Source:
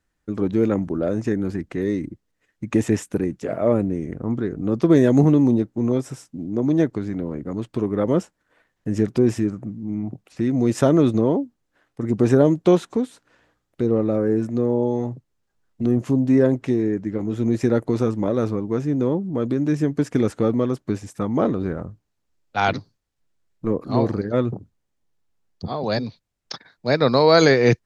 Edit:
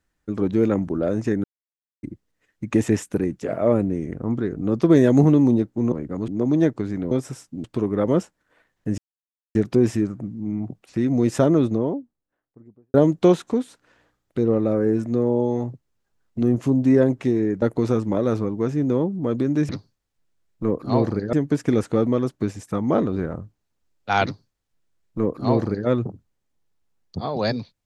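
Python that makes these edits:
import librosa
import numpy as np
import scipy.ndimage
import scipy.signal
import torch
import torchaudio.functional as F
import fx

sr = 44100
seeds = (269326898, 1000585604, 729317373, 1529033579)

y = fx.studio_fade_out(x, sr, start_s=10.48, length_s=1.89)
y = fx.edit(y, sr, fx.silence(start_s=1.44, length_s=0.59),
    fx.swap(start_s=5.92, length_s=0.53, other_s=7.28, other_length_s=0.36),
    fx.insert_silence(at_s=8.98, length_s=0.57),
    fx.cut(start_s=17.05, length_s=0.68),
    fx.duplicate(start_s=22.71, length_s=1.64, to_s=19.8), tone=tone)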